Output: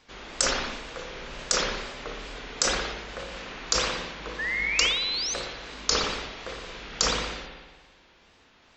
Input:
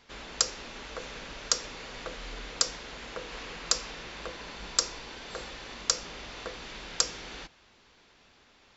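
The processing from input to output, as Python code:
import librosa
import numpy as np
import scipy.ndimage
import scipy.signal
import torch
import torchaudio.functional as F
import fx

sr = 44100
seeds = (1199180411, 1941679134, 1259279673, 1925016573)

y = fx.spec_paint(x, sr, seeds[0], shape='rise', start_s=4.38, length_s=0.96, low_hz=1600.0, high_hz=5900.0, level_db=-30.0)
y = fx.wow_flutter(y, sr, seeds[1], rate_hz=2.1, depth_cents=140.0)
y = fx.rev_spring(y, sr, rt60_s=1.6, pass_ms=(57,), chirp_ms=65, drr_db=1.5)
y = fx.sustainer(y, sr, db_per_s=43.0)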